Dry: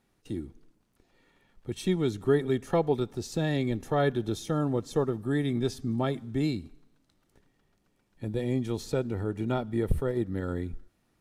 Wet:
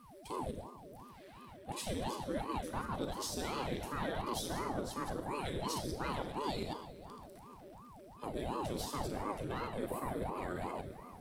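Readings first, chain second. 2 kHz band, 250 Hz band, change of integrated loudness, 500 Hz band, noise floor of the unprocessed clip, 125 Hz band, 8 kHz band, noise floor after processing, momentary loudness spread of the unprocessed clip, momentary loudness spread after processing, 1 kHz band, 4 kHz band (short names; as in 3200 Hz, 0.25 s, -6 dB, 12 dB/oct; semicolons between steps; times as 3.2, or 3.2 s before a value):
-6.0 dB, -12.0 dB, -9.5 dB, -11.0 dB, -72 dBFS, -13.5 dB, +0.5 dB, -55 dBFS, 11 LU, 15 LU, -0.5 dB, -2.5 dB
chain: reverse delay 0.102 s, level -6 dB; low shelf 140 Hz -12 dB; notch 6700 Hz, Q 5.3; reverse; compressor, threshold -38 dBFS, peak gain reduction 17 dB; reverse; high shelf 4800 Hz +10 dB; in parallel at -5.5 dB: hard clip -39 dBFS, distortion -10 dB; on the sum: whine 480 Hz -55 dBFS; tape echo 0.525 s, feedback 62%, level -15 dB, low-pass 1400 Hz; Schroeder reverb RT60 0.86 s, combs from 29 ms, DRR 5 dB; ring modulator with a swept carrier 410 Hz, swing 80%, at 2.8 Hz; gain +1 dB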